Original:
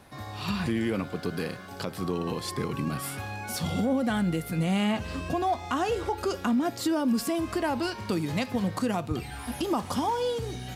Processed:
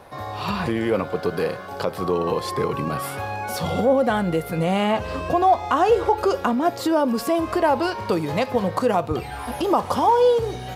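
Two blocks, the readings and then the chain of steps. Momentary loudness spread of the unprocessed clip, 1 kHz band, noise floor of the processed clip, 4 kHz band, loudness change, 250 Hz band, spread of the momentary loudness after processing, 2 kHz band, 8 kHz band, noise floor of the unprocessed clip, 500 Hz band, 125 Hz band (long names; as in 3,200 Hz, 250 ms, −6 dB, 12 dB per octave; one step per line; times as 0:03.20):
8 LU, +10.5 dB, −34 dBFS, +3.0 dB, +7.5 dB, +3.0 dB, 9 LU, +5.5 dB, +0.5 dB, −41 dBFS, +11.0 dB, +3.0 dB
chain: octave-band graphic EQ 250/500/1,000/8,000 Hz −4/+9/+6/−4 dB
level +3.5 dB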